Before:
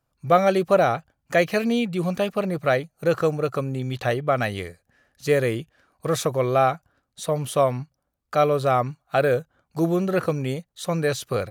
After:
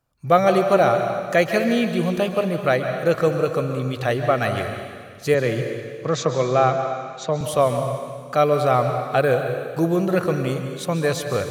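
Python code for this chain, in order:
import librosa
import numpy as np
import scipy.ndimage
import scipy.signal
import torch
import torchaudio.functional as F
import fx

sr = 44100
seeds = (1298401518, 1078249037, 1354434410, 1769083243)

y = fx.cheby1_bandpass(x, sr, low_hz=110.0, high_hz=7000.0, order=5, at=(5.34, 7.41))
y = fx.rev_plate(y, sr, seeds[0], rt60_s=1.9, hf_ratio=1.0, predelay_ms=120, drr_db=5.5)
y = F.gain(torch.from_numpy(y), 1.5).numpy()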